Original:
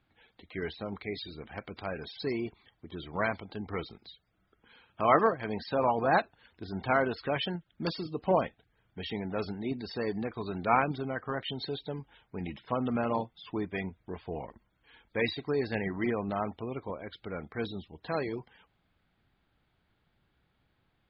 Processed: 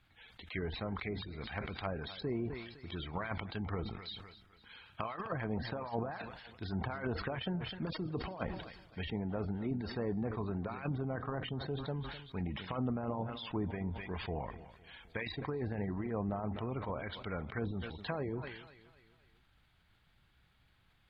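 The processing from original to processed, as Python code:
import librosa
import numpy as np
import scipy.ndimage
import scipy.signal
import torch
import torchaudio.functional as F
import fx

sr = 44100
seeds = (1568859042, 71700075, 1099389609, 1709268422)

p1 = fx.peak_eq(x, sr, hz=380.0, db=-10.5, octaves=2.7)
p2 = fx.over_compress(p1, sr, threshold_db=-39.0, ratio=-0.5)
p3 = p2 + fx.echo_feedback(p2, sr, ms=255, feedback_pct=48, wet_db=-19.0, dry=0)
p4 = fx.env_lowpass_down(p3, sr, base_hz=760.0, full_db=-36.0)
p5 = fx.sustainer(p4, sr, db_per_s=57.0)
y = F.gain(torch.from_numpy(p5), 3.5).numpy()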